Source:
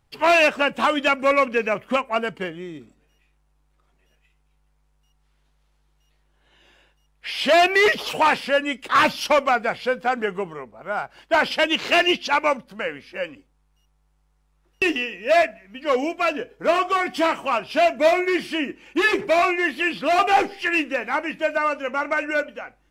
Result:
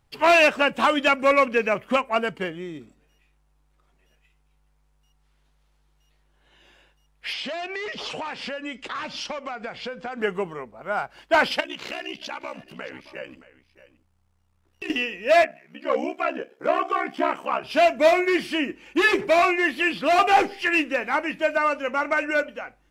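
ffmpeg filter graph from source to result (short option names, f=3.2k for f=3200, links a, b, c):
-filter_complex "[0:a]asettb=1/sr,asplit=3[a][b][c];[a]atrim=end=7.334[d];[b]atrim=start=7.33:end=10.21,asetpts=PTS-STARTPTS,afade=t=in:d=0.004:c=qsin,afade=t=out:st=2.876:d=0.004:c=qsin,lowpass=f=7.5k:w=0.5412,lowpass=f=7.5k:w=1.3066,acompressor=threshold=-28dB:ratio=16:attack=3.2:release=140:knee=1:detection=peak[e];[c]atrim=start=10.206[f];[d][e]acrossfade=d=0.004:c1=hsin:c2=qsin[g];[g][f]acrossfade=d=0.004:c1=qsin:c2=hsin,asettb=1/sr,asplit=3[h][i][j];[h]atrim=end=11.604[k];[i]atrim=start=11.6:end=14.9,asetpts=PTS-STARTPTS,afade=t=in:d=0.004:c=qsin,afade=t=out:st=3.296:d=0.004:c=qsin,acompressor=threshold=-28dB:ratio=6:attack=3.2:release=140:knee=1:detection=peak,aeval=exprs='val(0)*sin(2*PI*32*n/s)':c=same,aecho=1:1:621:0.141,atrim=end_sample=145530[l];[j]atrim=start=14.896[m];[k][l]acrossfade=d=0.004:c1=hsin:c2=qsin[n];[n][m]acrossfade=d=0.004:c1=qsin:c2=hsin,asettb=1/sr,asplit=3[o][p][q];[o]atrim=end=15.444[r];[p]atrim=start=15.44:end=17.64,asetpts=PTS-STARTPTS,afade=t=in:d=0.004:c=qsin,afade=t=out:st=2.196:d=0.004:c=qsin,highpass=f=200:w=0.5412,highpass=f=200:w=1.3066,acrossover=split=2500[s][t];[t]acompressor=threshold=-46dB:ratio=4:attack=1:release=60[u];[s][u]amix=inputs=2:normalize=0,aeval=exprs='val(0)*sin(2*PI*33*n/s)':c=same[v];[q]atrim=start=17.636[w];[r][v]acrossfade=d=0.004:c1=hsin:c2=qsin[x];[x][w]acrossfade=d=0.004:c1=qsin:c2=hsin"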